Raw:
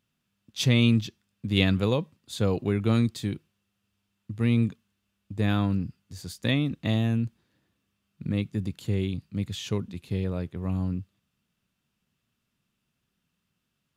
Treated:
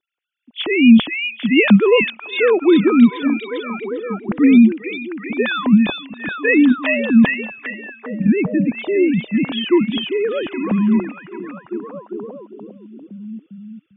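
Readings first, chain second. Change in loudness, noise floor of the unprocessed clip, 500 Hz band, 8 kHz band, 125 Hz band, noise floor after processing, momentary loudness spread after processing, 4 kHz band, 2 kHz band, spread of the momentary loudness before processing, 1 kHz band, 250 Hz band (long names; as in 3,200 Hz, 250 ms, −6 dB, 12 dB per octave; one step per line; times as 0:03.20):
+11.5 dB, −79 dBFS, +15.0 dB, below −35 dB, −1.0 dB, −52 dBFS, 19 LU, +7.5 dB, +16.0 dB, 15 LU, +12.5 dB, +14.5 dB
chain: three sine waves on the formant tracks
automatic gain control gain up to 14 dB
echo through a band-pass that steps 399 ms, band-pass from 3,000 Hz, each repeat −0.7 octaves, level −0.5 dB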